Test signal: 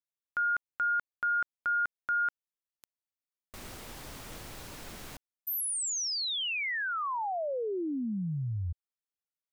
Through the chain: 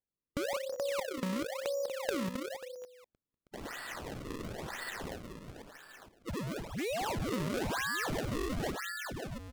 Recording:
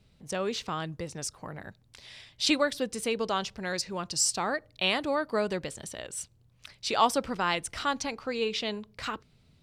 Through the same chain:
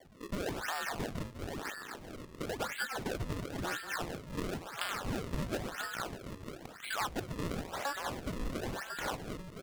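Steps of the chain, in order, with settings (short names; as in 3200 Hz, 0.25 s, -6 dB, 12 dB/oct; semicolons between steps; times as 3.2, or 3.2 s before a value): band inversion scrambler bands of 2000 Hz; low shelf 220 Hz -10 dB; compressor 4:1, threshold -40 dBFS; echoes that change speed 0.141 s, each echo -1 st, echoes 2, each echo -6 dB; air absorption 170 m; on a send: echo 0.194 s -10.5 dB; on the sum: downsampling 8000 Hz; decimation with a swept rate 33×, swing 160% 0.98 Hz; Doppler distortion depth 0.32 ms; gain +5.5 dB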